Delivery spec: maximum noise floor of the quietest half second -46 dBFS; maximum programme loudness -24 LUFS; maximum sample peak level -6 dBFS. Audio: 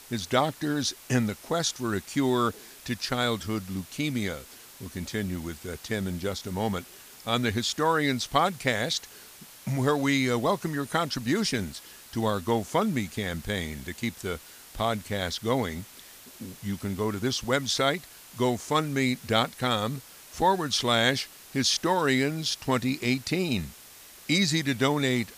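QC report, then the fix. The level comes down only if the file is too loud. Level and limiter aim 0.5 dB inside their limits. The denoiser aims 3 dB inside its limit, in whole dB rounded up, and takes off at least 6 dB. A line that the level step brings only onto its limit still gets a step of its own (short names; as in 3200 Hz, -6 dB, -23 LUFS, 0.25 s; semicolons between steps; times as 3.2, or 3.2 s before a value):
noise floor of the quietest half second -49 dBFS: OK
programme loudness -27.5 LUFS: OK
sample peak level -8.0 dBFS: OK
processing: none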